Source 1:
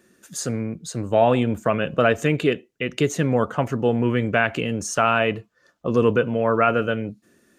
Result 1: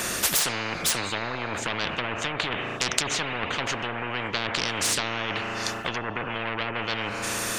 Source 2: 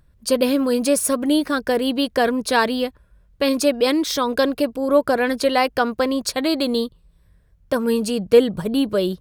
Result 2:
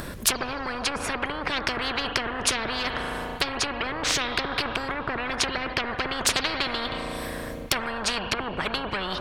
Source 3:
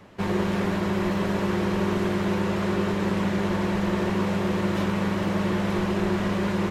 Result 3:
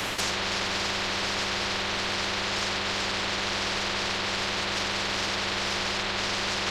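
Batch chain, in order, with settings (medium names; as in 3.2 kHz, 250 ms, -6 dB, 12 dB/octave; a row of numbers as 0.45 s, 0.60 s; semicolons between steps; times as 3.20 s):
low-pass that closes with the level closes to 450 Hz, closed at -13.5 dBFS; reverse; compression, threshold -27 dBFS; reverse; spring tank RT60 2.5 s, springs 35 ms, chirp 40 ms, DRR 16.5 dB; in parallel at -2 dB: peak limiter -29.5 dBFS; on the sum: saturation -19.5 dBFS; spectrum-flattening compressor 10:1; normalise loudness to -27 LUFS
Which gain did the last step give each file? +16.0 dB, +16.5 dB, +5.0 dB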